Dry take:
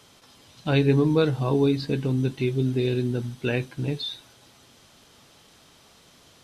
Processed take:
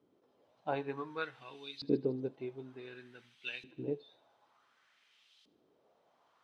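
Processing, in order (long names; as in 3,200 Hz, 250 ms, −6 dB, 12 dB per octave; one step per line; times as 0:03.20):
auto-filter band-pass saw up 0.55 Hz 290–3,900 Hz
feedback echo with a high-pass in the loop 77 ms, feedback 63%, high-pass 1,000 Hz, level −19.5 dB
expander for the loud parts 1.5 to 1, over −41 dBFS
level +1 dB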